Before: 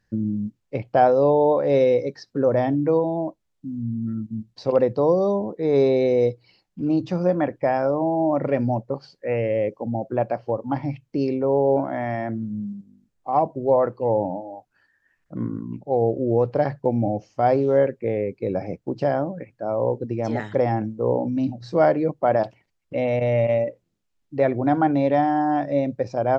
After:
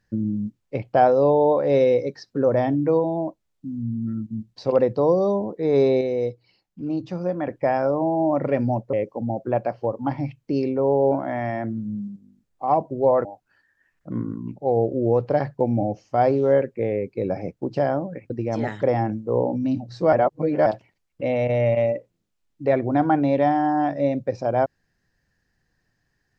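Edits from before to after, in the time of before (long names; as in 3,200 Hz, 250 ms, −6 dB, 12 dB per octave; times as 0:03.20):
0:06.01–0:07.47: clip gain −5 dB
0:08.93–0:09.58: remove
0:13.90–0:14.50: remove
0:19.55–0:20.02: remove
0:21.85–0:22.38: reverse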